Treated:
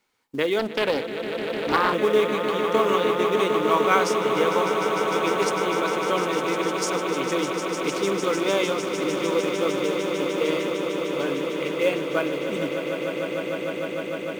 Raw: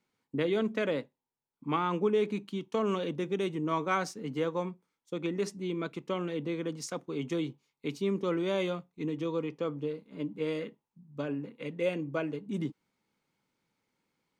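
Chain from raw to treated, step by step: peaking EQ 160 Hz -13 dB 2 oct; in parallel at -4 dB: short-mantissa float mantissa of 2-bit; on the sum: echo with a slow build-up 151 ms, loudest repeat 8, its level -10 dB; 0.59–1.94 s: loudspeaker Doppler distortion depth 0.47 ms; trim +6 dB

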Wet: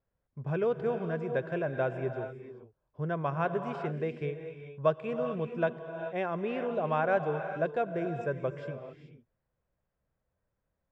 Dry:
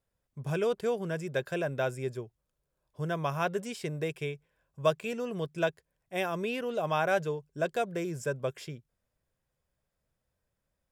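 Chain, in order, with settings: low-pass 1.8 kHz 12 dB/octave; gated-style reverb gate 460 ms rising, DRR 7.5 dB

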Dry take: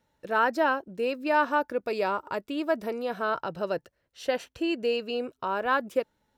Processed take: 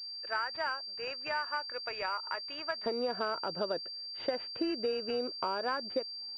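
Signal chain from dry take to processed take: high-pass 1.3 kHz 12 dB/octave, from 2.86 s 220 Hz; compression 8:1, threshold -34 dBFS, peak gain reduction 14.5 dB; class-D stage that switches slowly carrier 4.7 kHz; trim +4 dB

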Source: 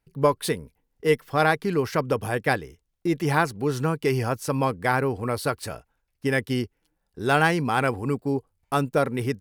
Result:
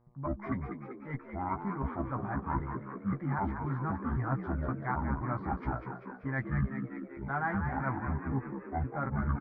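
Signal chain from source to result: pitch shift switched off and on -9.5 st, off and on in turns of 260 ms; Chebyshev low-pass 2.3 kHz, order 4; reverse; compression 6:1, threshold -33 dBFS, peak gain reduction 17.5 dB; reverse; static phaser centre 1.1 kHz, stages 4; doubling 15 ms -5 dB; on a send: frequency-shifting echo 194 ms, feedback 60%, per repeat +66 Hz, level -7.5 dB; on the sum: mains buzz 120 Hz, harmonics 10, -73 dBFS -5 dB/octave; trim +4 dB

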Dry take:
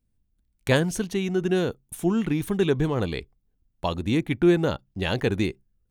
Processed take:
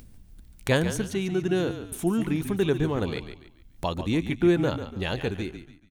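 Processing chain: fade out at the end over 0.94 s; upward compressor, threshold -27 dBFS; frequency-shifting echo 143 ms, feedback 35%, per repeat -39 Hz, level -10 dB; trim -2 dB

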